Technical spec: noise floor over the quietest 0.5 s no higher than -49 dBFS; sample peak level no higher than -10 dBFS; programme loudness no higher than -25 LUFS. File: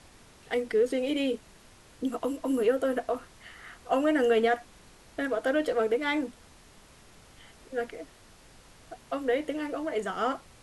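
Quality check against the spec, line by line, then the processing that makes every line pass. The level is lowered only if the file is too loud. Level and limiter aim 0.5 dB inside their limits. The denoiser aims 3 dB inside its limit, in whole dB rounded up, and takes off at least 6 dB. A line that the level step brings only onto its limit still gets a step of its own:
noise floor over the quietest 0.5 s -55 dBFS: OK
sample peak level -13.5 dBFS: OK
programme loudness -29.0 LUFS: OK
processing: none

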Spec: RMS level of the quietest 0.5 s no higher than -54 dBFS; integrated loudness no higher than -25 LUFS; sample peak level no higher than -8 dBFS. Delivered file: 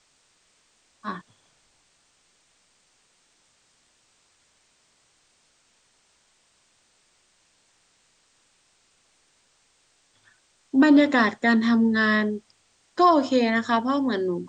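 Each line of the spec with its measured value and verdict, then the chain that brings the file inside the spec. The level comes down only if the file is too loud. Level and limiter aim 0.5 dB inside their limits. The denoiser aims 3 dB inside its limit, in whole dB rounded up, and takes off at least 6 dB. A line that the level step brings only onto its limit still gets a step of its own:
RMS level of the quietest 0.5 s -65 dBFS: OK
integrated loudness -21.0 LUFS: fail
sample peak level -6.5 dBFS: fail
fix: gain -4.5 dB

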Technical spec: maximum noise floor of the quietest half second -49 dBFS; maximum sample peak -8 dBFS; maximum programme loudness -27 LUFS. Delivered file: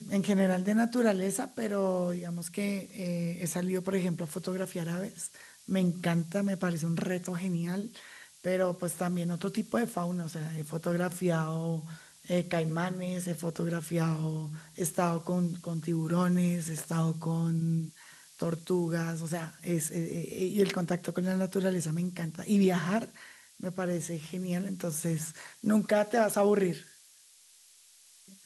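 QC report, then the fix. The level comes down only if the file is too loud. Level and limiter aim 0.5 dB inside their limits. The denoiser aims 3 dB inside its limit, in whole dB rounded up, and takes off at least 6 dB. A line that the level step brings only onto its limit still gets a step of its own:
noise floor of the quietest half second -59 dBFS: OK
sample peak -14.5 dBFS: OK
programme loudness -31.5 LUFS: OK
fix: none

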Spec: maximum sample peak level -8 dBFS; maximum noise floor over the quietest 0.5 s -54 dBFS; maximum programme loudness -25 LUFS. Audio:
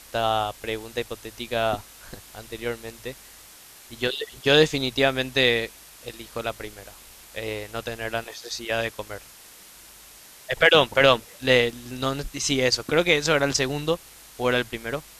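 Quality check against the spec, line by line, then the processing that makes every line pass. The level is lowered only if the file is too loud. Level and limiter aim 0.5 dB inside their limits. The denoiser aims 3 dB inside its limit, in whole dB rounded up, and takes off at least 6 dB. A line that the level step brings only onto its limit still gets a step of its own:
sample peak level -3.0 dBFS: fail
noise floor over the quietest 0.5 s -48 dBFS: fail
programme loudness -23.5 LUFS: fail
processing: denoiser 7 dB, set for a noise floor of -48 dBFS; gain -2 dB; limiter -8.5 dBFS

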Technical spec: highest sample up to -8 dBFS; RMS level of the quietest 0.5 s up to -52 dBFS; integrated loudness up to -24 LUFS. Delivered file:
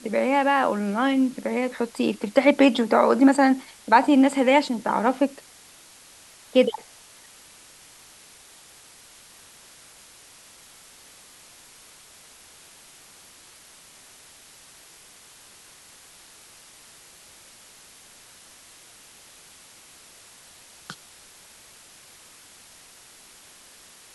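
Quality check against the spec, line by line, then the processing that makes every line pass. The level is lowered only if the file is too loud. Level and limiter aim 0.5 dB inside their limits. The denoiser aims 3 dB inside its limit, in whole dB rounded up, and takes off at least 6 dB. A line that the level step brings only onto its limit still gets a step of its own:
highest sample -3.5 dBFS: fail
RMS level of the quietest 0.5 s -50 dBFS: fail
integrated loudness -21.0 LUFS: fail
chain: gain -3.5 dB; limiter -8.5 dBFS

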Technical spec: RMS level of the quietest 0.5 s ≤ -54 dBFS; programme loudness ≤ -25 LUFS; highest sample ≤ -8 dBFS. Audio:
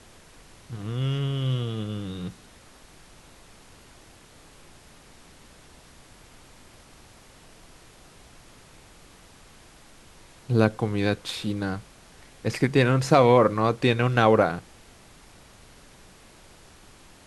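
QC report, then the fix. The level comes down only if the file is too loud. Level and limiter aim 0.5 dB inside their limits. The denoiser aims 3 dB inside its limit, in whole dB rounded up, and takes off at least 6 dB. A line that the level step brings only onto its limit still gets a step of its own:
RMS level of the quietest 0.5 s -51 dBFS: fail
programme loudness -24.0 LUFS: fail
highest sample -4.0 dBFS: fail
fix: denoiser 6 dB, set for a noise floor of -51 dBFS; gain -1.5 dB; limiter -8.5 dBFS

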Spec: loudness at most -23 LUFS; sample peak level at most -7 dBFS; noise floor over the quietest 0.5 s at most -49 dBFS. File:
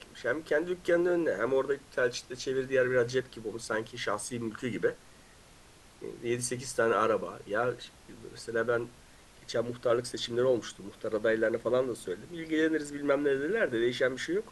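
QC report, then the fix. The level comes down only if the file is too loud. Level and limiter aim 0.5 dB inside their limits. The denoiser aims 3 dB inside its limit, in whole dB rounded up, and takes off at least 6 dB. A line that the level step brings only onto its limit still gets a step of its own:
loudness -31.0 LUFS: OK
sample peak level -13.5 dBFS: OK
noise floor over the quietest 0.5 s -56 dBFS: OK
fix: none

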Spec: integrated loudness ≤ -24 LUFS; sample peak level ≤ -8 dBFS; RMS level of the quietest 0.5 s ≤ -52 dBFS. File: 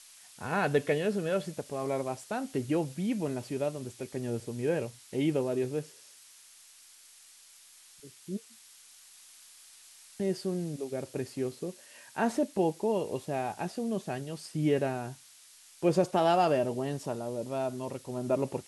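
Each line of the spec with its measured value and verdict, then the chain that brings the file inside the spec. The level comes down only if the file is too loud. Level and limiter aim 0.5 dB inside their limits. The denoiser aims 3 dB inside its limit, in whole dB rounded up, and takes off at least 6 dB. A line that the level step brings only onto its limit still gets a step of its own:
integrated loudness -32.0 LUFS: OK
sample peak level -13.5 dBFS: OK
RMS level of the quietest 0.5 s -56 dBFS: OK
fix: none

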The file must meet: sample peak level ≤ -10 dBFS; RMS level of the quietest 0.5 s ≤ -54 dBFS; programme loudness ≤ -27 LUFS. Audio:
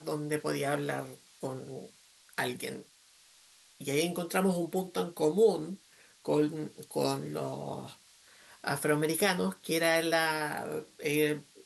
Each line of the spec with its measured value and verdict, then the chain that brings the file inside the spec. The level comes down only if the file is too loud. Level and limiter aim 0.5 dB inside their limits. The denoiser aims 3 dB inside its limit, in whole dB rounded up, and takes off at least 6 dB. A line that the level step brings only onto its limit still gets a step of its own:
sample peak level -14.0 dBFS: OK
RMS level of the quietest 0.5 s -61 dBFS: OK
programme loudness -31.5 LUFS: OK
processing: none

